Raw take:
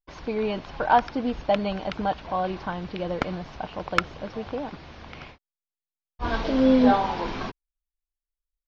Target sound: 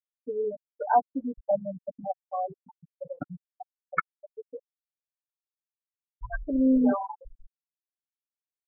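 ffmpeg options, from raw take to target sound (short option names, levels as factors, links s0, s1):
-af "anlmdn=25.1,afftfilt=real='re*gte(hypot(re,im),0.282)':imag='im*gte(hypot(re,im),0.282)':win_size=1024:overlap=0.75,aecho=1:1:6.9:0.82,volume=0.562"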